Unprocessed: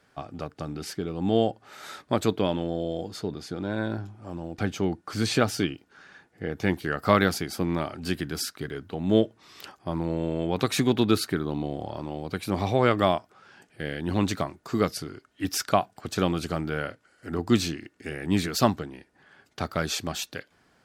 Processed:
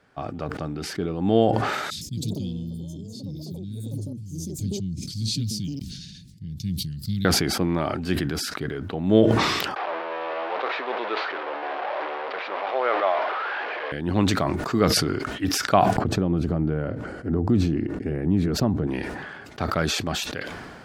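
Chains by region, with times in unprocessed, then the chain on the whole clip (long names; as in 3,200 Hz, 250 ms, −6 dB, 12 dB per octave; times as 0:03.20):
0:01.90–0:07.25: Chebyshev band-stop filter 170–4,200 Hz, order 3 + delay with pitch and tempo change per echo 112 ms, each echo +6 semitones, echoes 3, each echo −6 dB
0:09.76–0:13.92: linear delta modulator 32 kbit/s, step −20 dBFS + high-pass filter 510 Hz 24 dB per octave + high-frequency loss of the air 450 metres
0:15.96–0:18.87: downward compressor 3 to 1, threshold −30 dBFS + tilt shelving filter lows +10 dB, about 830 Hz
whole clip: high-shelf EQ 4,400 Hz −10.5 dB; level that may fall only so fast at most 31 dB per second; level +3 dB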